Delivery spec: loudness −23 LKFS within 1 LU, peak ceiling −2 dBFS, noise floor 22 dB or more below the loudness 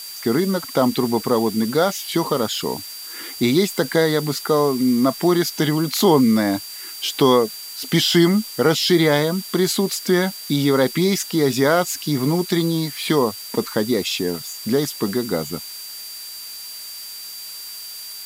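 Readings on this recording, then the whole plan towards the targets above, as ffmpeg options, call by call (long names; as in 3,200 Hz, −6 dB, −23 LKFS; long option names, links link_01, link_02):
interfering tone 4,700 Hz; level of the tone −35 dBFS; background noise floor −35 dBFS; target noise floor −42 dBFS; integrated loudness −19.5 LKFS; sample peak −3.5 dBFS; target loudness −23.0 LKFS
→ -af "bandreject=frequency=4700:width=30"
-af "afftdn=noise_reduction=7:noise_floor=-35"
-af "volume=-3.5dB"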